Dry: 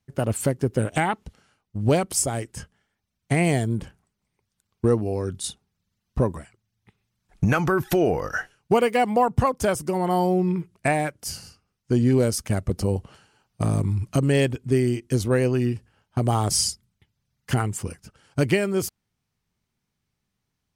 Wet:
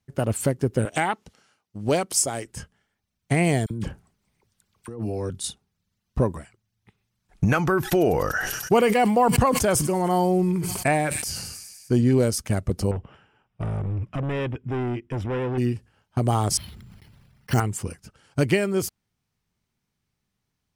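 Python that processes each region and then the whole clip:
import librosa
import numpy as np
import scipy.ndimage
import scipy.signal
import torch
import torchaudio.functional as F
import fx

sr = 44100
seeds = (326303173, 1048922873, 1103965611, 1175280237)

y = fx.chain(x, sr, fx.highpass(hz=270.0, slope=6),
    fx.peak_eq(hz=5700.0, db=3.5, octaves=0.87), at=(0.85, 2.46))
y = fx.chain(y, sr, fx.dispersion(late='lows', ms=43.0, hz=1300.0),
    fx.over_compress(threshold_db=-30.0, ratio=-1.0), at=(3.66, 5.3))
y = fx.chain(y, sr, fx.echo_wet_highpass(ms=98, feedback_pct=82, hz=5600.0, wet_db=-13.5),
    fx.sustainer(db_per_s=34.0), at=(7.81, 12.01))
y = fx.chain(y, sr, fx.clip_hard(threshold_db=-24.5),
    fx.savgol(points=25), at=(12.91, 15.58))
y = fx.chain(y, sr, fx.block_float(bits=7),
    fx.resample_bad(factor=6, down='filtered', up='hold'),
    fx.sustainer(db_per_s=26.0), at=(16.57, 17.6))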